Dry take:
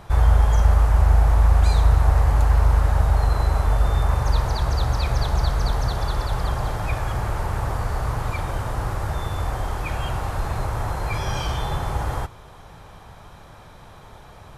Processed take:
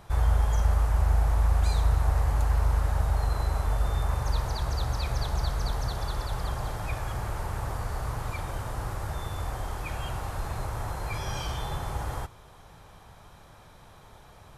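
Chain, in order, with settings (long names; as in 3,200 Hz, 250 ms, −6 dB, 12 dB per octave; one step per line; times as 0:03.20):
high-shelf EQ 5,000 Hz +5.5 dB
level −7.5 dB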